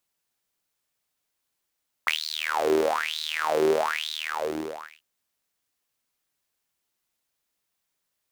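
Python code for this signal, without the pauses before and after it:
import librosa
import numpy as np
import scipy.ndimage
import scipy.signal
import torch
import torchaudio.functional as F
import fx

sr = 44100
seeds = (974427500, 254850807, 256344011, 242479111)

y = fx.sub_patch_wobble(sr, seeds[0], note=39, wave='saw', wave2='saw', interval_st=0, level2_db=-9.0, sub_db=-15.0, noise_db=-30.0, kind='highpass', cutoff_hz=920.0, q=8.8, env_oct=1.0, env_decay_s=0.27, env_sustain_pct=40, attack_ms=1.1, decay_s=0.12, sustain_db=-7, release_s=1.02, note_s=1.92, lfo_hz=1.1, wobble_oct=1.7)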